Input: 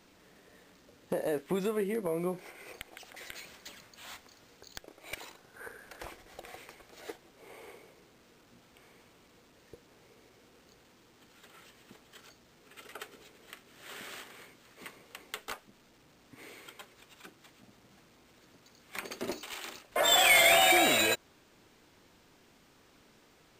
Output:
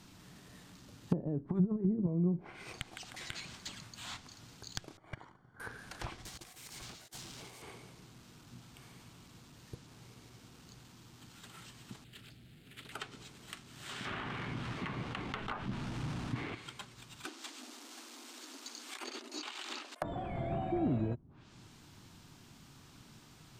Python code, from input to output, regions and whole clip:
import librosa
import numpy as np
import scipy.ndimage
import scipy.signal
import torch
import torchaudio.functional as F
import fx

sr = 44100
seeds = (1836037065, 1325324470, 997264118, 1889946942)

y = fx.chain(x, sr, fx.peak_eq(hz=2800.0, db=-11.5, octaves=0.97),
    fx.over_compress(threshold_db=-34.0, ratio=-0.5), at=(1.4, 2.07))
y = fx.chain(y, sr, fx.law_mismatch(coded='A'),
    fx.savgol(points=41), at=(4.97, 5.6))
y = fx.chain(y, sr, fx.crossing_spikes(level_db=-42.5),
    fx.over_compress(threshold_db=-52.0, ratio=-0.5),
    fx.high_shelf(hz=7000.0, db=6.5), at=(6.25, 7.62))
y = fx.chain(y, sr, fx.fixed_phaser(hz=2500.0, stages=4),
    fx.doppler_dist(depth_ms=0.37), at=(12.04, 12.92))
y = fx.chain(y, sr, fx.median_filter(points=9),
    fx.env_flatten(amount_pct=70), at=(14.05, 16.55))
y = fx.chain(y, sr, fx.high_shelf(hz=4600.0, db=5.5),
    fx.over_compress(threshold_db=-47.0, ratio=-1.0),
    fx.brickwall_highpass(low_hz=240.0), at=(17.25, 20.02))
y = fx.env_lowpass_down(y, sr, base_hz=340.0, full_db=-31.0)
y = fx.graphic_eq_10(y, sr, hz=(125, 500, 2000), db=(9, -12, -6))
y = F.gain(torch.from_numpy(y), 6.0).numpy()